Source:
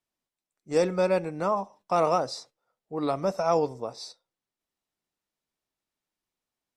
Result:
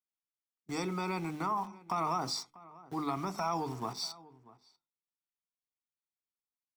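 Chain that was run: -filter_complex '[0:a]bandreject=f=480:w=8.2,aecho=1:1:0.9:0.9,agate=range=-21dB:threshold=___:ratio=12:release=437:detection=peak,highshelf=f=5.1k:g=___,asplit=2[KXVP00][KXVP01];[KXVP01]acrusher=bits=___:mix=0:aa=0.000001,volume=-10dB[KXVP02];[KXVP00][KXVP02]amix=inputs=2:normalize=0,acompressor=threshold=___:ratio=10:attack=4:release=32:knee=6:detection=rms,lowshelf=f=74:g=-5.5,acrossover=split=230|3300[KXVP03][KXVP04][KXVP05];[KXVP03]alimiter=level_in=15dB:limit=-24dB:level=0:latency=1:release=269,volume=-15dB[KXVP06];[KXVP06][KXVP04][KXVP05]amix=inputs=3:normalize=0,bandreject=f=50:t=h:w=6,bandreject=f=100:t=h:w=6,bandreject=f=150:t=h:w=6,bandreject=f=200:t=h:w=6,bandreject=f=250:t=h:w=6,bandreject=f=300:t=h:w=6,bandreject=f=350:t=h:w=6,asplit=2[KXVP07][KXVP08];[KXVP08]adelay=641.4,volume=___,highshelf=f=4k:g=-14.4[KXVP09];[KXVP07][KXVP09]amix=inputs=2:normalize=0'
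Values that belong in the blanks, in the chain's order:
-46dB, -3, 6, -29dB, -20dB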